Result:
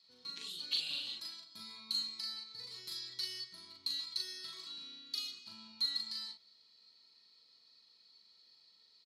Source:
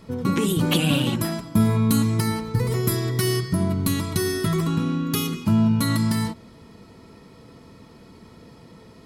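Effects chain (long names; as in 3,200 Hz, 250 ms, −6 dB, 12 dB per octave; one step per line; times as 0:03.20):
resonant band-pass 4,300 Hz, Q 13
double-tracking delay 40 ms −2.5 dB
level +3 dB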